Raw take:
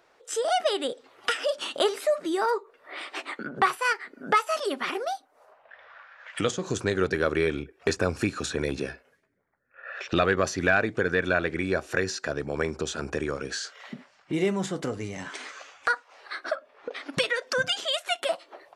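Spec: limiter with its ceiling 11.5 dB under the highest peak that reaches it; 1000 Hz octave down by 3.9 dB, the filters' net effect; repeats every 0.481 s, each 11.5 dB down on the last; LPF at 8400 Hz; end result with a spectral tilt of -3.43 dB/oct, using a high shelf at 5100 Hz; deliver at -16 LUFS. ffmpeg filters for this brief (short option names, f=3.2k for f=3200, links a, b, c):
-af "lowpass=8.4k,equalizer=f=1k:t=o:g=-6,highshelf=f=5.1k:g=4.5,alimiter=limit=-22.5dB:level=0:latency=1,aecho=1:1:481|962|1443:0.266|0.0718|0.0194,volume=17.5dB"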